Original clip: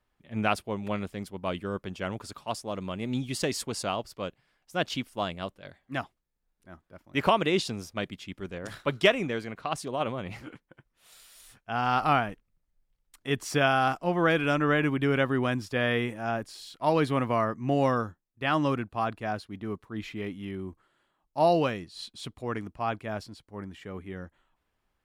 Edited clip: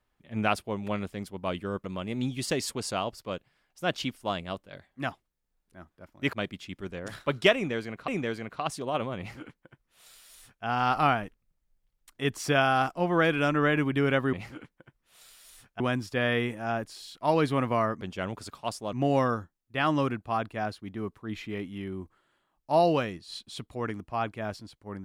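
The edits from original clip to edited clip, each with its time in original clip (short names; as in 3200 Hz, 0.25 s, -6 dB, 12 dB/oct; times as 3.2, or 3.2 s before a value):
1.84–2.76 move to 17.6
7.25–7.92 cut
9.14–9.67 loop, 2 plays
10.24–11.71 copy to 15.39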